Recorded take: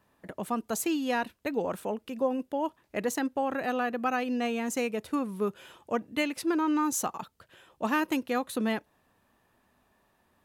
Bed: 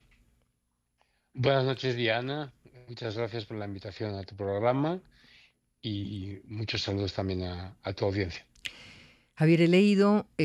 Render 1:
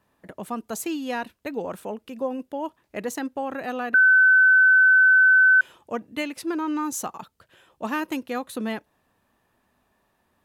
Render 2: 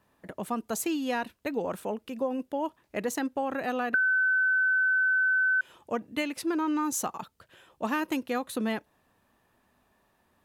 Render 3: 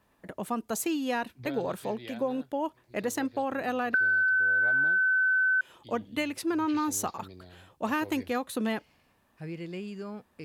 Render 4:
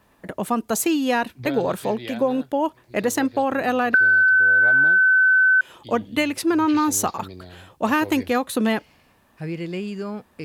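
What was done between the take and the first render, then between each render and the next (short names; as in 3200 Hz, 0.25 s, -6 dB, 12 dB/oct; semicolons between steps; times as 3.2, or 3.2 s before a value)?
3.94–5.61 bleep 1520 Hz -12 dBFS
compressor 6:1, threshold -24 dBFS, peak gain reduction 9.5 dB
add bed -16.5 dB
gain +9 dB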